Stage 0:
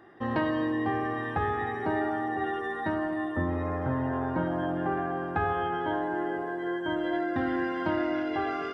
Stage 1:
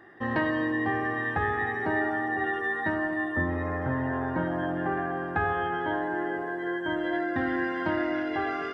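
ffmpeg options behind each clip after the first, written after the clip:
ffmpeg -i in.wav -af "equalizer=frequency=1800:width=5.1:gain=8.5" out.wav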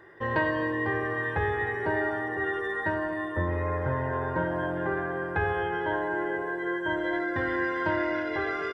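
ffmpeg -i in.wav -af "aecho=1:1:2:0.65" out.wav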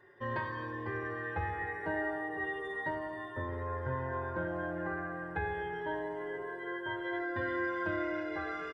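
ffmpeg -i in.wav -filter_complex "[0:a]asplit=2[link_01][link_02];[link_02]adelay=5,afreqshift=-0.3[link_03];[link_01][link_03]amix=inputs=2:normalize=1,volume=-5dB" out.wav

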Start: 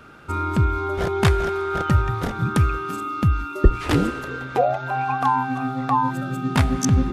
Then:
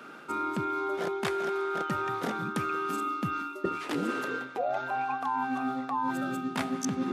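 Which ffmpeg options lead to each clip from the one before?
ffmpeg -i in.wav -af "highpass=frequency=200:width=0.5412,highpass=frequency=200:width=1.3066,areverse,acompressor=threshold=-28dB:ratio=6,areverse" out.wav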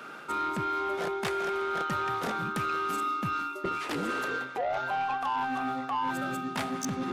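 ffmpeg -i in.wav -af "equalizer=frequency=270:width_type=o:width=1.2:gain=-6,asoftclip=type=tanh:threshold=-28.5dB,volume=4dB" out.wav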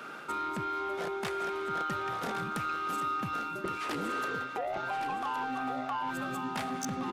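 ffmpeg -i in.wav -af "acompressor=threshold=-32dB:ratio=6,aecho=1:1:1117:0.376" out.wav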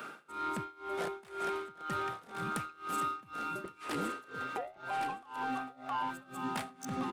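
ffmpeg -i in.wav -af "aexciter=amount=2:drive=3:freq=8000,tremolo=f=2:d=0.94" out.wav

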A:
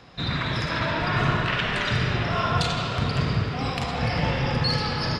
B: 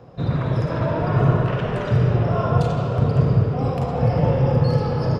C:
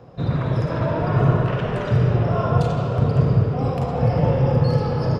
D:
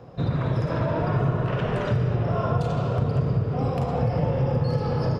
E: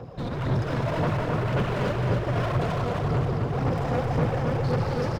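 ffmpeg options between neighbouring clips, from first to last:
ffmpeg -i in.wav -af "equalizer=frequency=125:width_type=o:width=1:gain=9,equalizer=frequency=500:width_type=o:width=1:gain=10,equalizer=frequency=2000:width_type=o:width=1:gain=-9,equalizer=frequency=4000:width_type=o:width=1:gain=-12,equalizer=frequency=8000:width_type=o:width=1:gain=-7" out.wav
ffmpeg -i in.wav -af anull out.wav
ffmpeg -i in.wav -af "acompressor=threshold=-21dB:ratio=3" out.wav
ffmpeg -i in.wav -af "asoftclip=type=hard:threshold=-28.5dB,aphaser=in_gain=1:out_gain=1:delay=4.2:decay=0.48:speed=1.9:type=sinusoidal,aecho=1:1:264|528|792|1056|1320|1584:0.631|0.303|0.145|0.0698|0.0335|0.0161,volume=1.5dB" out.wav

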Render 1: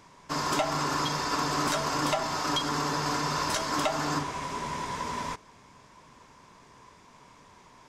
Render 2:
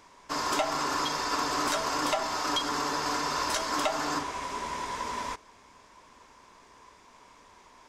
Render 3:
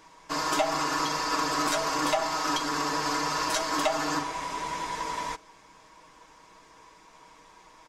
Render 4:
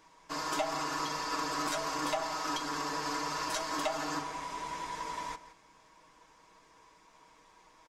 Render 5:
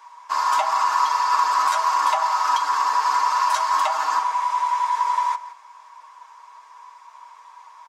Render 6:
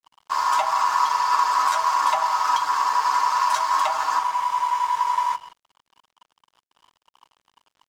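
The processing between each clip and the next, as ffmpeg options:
ffmpeg -i in.wav -af "equalizer=frequency=140:width=1.3:gain=-12.5" out.wav
ffmpeg -i in.wav -af "aecho=1:1:6.3:0.65" out.wav
ffmpeg -i in.wav -filter_complex "[0:a]asplit=2[link_01][link_02];[link_02]adelay=169.1,volume=-14dB,highshelf=frequency=4000:gain=-3.8[link_03];[link_01][link_03]amix=inputs=2:normalize=0,volume=-7dB" out.wav
ffmpeg -i in.wav -af "highpass=frequency=990:width_type=q:width=4.5,volume=6dB" out.wav
ffmpeg -i in.wav -af "aeval=exprs='sgn(val(0))*max(abs(val(0))-0.01,0)':channel_layout=same" out.wav

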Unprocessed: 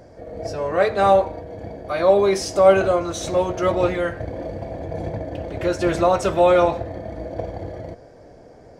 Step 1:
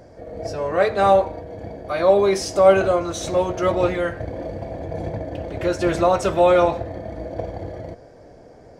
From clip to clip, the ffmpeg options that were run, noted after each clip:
ffmpeg -i in.wav -af anull out.wav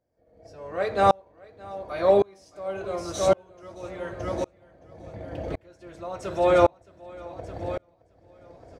ffmpeg -i in.wav -af "aecho=1:1:619|1238|1857|2476:0.422|0.156|0.0577|0.0214,aeval=exprs='val(0)*pow(10,-35*if(lt(mod(-0.9*n/s,1),2*abs(-0.9)/1000),1-mod(-0.9*n/s,1)/(2*abs(-0.9)/1000),(mod(-0.9*n/s,1)-2*abs(-0.9)/1000)/(1-2*abs(-0.9)/1000))/20)':channel_layout=same" out.wav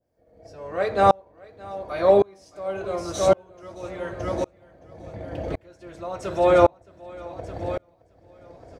ffmpeg -i in.wav -af "adynamicequalizer=threshold=0.0126:dfrequency=1700:dqfactor=0.7:tfrequency=1700:tqfactor=0.7:attack=5:release=100:ratio=0.375:range=3:mode=cutabove:tftype=highshelf,volume=2.5dB" out.wav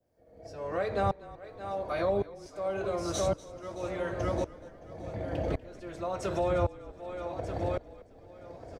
ffmpeg -i in.wav -filter_complex "[0:a]acrossover=split=150[link_01][link_02];[link_02]acompressor=threshold=-29dB:ratio=4[link_03];[link_01][link_03]amix=inputs=2:normalize=0,asplit=4[link_04][link_05][link_06][link_07];[link_05]adelay=243,afreqshift=-39,volume=-19dB[link_08];[link_06]adelay=486,afreqshift=-78,volume=-27.2dB[link_09];[link_07]adelay=729,afreqshift=-117,volume=-35.4dB[link_10];[link_04][link_08][link_09][link_10]amix=inputs=4:normalize=0" out.wav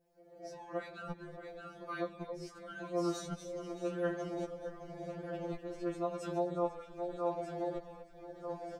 ffmpeg -i in.wav -af "areverse,acompressor=threshold=-38dB:ratio=4,areverse,afftfilt=real='re*2.83*eq(mod(b,8),0)':imag='im*2.83*eq(mod(b,8),0)':win_size=2048:overlap=0.75,volume=3.5dB" out.wav

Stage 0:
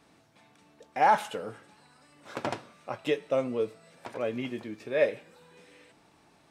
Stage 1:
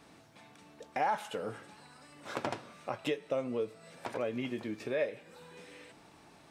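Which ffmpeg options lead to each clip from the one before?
ffmpeg -i in.wav -af "acompressor=threshold=-38dB:ratio=2.5,volume=3.5dB" out.wav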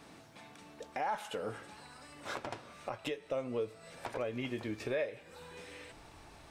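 ffmpeg -i in.wav -af "asubboost=boost=8.5:cutoff=64,alimiter=level_in=4.5dB:limit=-24dB:level=0:latency=1:release=416,volume=-4.5dB,volume=3dB" out.wav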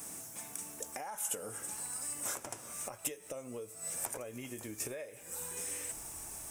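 ffmpeg -i in.wav -af "acompressor=threshold=-43dB:ratio=4,aexciter=amount=15.6:drive=5.9:freq=6300,volume=1dB" out.wav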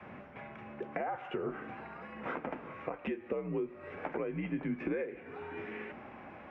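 ffmpeg -i in.wav -af "highpass=frequency=180:width_type=q:width=0.5412,highpass=frequency=180:width_type=q:width=1.307,lowpass=frequency=2600:width_type=q:width=0.5176,lowpass=frequency=2600:width_type=q:width=0.7071,lowpass=frequency=2600:width_type=q:width=1.932,afreqshift=-76,adynamicequalizer=threshold=0.00126:dfrequency=270:dqfactor=1.7:tfrequency=270:tqfactor=1.7:attack=5:release=100:ratio=0.375:range=3:mode=boostabove:tftype=bell,volume=6.5dB" out.wav

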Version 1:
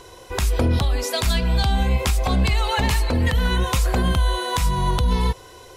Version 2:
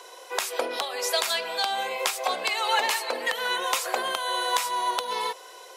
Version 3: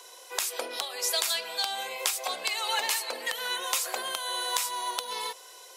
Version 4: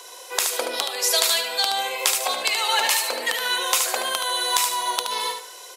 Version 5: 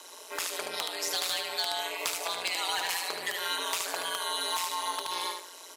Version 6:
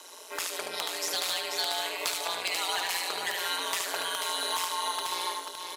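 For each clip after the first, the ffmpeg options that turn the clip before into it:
ffmpeg -i in.wav -af "highpass=frequency=480:width=0.5412,highpass=frequency=480:width=1.3066" out.wav
ffmpeg -i in.wav -af "highshelf=frequency=3300:gain=11.5,volume=-8dB" out.wav
ffmpeg -i in.wav -af "aecho=1:1:74|148|222|296:0.473|0.142|0.0426|0.0128,volume=7dB" out.wav
ffmpeg -i in.wav -filter_complex "[0:a]asoftclip=type=hard:threshold=-15dB,acrossover=split=860|5200[link_01][link_02][link_03];[link_01]acompressor=threshold=-33dB:ratio=4[link_04];[link_02]acompressor=threshold=-24dB:ratio=4[link_05];[link_03]acompressor=threshold=-30dB:ratio=4[link_06];[link_04][link_05][link_06]amix=inputs=3:normalize=0,aeval=exprs='val(0)*sin(2*PI*89*n/s)':channel_layout=same,volume=-3.5dB" out.wav
ffmpeg -i in.wav -af "aecho=1:1:488:0.501" out.wav

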